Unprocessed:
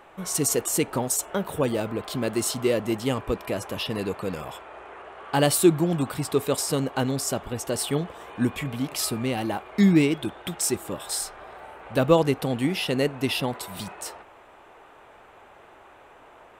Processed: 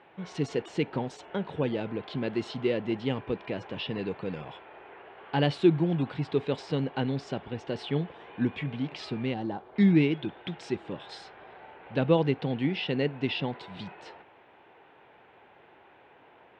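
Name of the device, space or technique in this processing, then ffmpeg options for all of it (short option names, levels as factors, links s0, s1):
guitar cabinet: -filter_complex "[0:a]highpass=100,equalizer=f=150:t=q:w=4:g=4,equalizer=f=620:t=q:w=4:g=-5,equalizer=f=1200:t=q:w=4:g=-9,lowpass=f=3700:w=0.5412,lowpass=f=3700:w=1.3066,asettb=1/sr,asplit=3[s0][s1][s2];[s0]atrim=end=9.344[s3];[s1]atrim=start=9.34:end=9.76,asetpts=PTS-STARTPTS,afade=t=in:d=0.004:c=qsin,afade=t=out:st=0.416:d=0.004:c=qsin,equalizer=f=2400:t=o:w=1:g=-15[s4];[s2]atrim=start=9.756[s5];[s3][s4]acrossfade=d=0.004:c1=hsin:c2=qsin[s6];[s6][s5]acrossfade=d=0.004:c1=qsin:c2=hsin,volume=0.668"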